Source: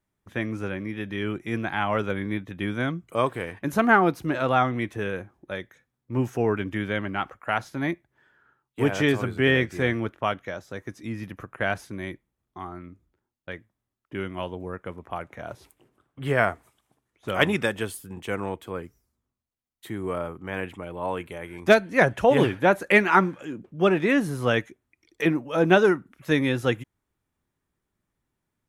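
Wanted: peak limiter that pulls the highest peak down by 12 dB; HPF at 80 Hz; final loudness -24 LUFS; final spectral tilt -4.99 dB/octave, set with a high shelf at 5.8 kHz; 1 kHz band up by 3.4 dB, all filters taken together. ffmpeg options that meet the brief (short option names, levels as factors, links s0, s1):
-af "highpass=80,equalizer=f=1000:t=o:g=5,highshelf=f=5800:g=-8.5,volume=1.5,alimiter=limit=0.376:level=0:latency=1"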